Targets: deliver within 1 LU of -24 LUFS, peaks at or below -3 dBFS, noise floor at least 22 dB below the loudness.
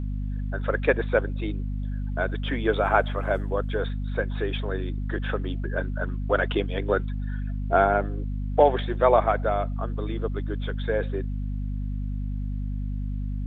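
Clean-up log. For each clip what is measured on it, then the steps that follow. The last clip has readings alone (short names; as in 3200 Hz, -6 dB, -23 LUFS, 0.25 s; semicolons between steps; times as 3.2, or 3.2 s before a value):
hum 50 Hz; harmonics up to 250 Hz; hum level -26 dBFS; loudness -26.5 LUFS; peak -4.5 dBFS; loudness target -24.0 LUFS
-> notches 50/100/150/200/250 Hz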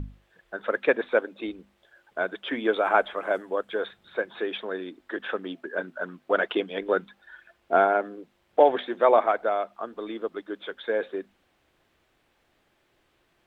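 hum none; loudness -27.0 LUFS; peak -4.5 dBFS; loudness target -24.0 LUFS
-> gain +3 dB; limiter -3 dBFS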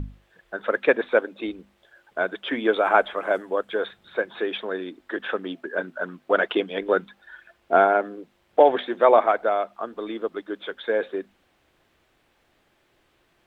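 loudness -24.0 LUFS; peak -3.0 dBFS; noise floor -66 dBFS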